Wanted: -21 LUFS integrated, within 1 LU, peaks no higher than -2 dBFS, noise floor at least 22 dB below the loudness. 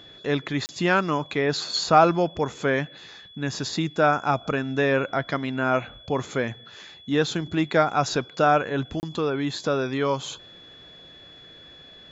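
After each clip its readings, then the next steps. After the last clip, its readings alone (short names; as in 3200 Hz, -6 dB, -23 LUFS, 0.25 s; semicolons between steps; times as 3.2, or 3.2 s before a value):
dropouts 2; longest dropout 29 ms; steady tone 3400 Hz; tone level -46 dBFS; loudness -24.5 LUFS; peak -4.5 dBFS; loudness target -21.0 LUFS
-> interpolate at 0.66/9, 29 ms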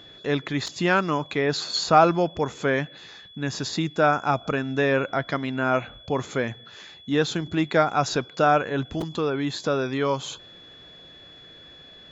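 dropouts 0; steady tone 3400 Hz; tone level -46 dBFS
-> notch 3400 Hz, Q 30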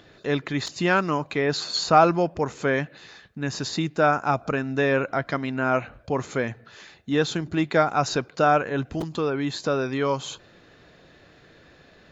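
steady tone none; loudness -24.5 LUFS; peak -4.5 dBFS; loudness target -21.0 LUFS
-> gain +3.5 dB; limiter -2 dBFS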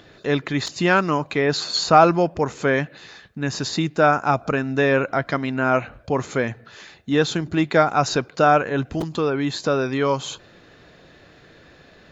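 loudness -21.0 LUFS; peak -2.0 dBFS; noise floor -51 dBFS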